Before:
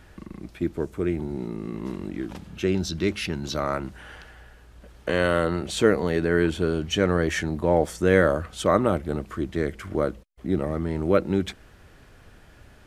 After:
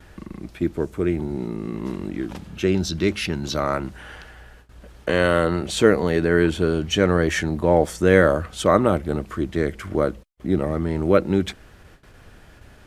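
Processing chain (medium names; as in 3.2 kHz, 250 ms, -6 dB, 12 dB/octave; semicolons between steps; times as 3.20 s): gate with hold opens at -41 dBFS; trim +3.5 dB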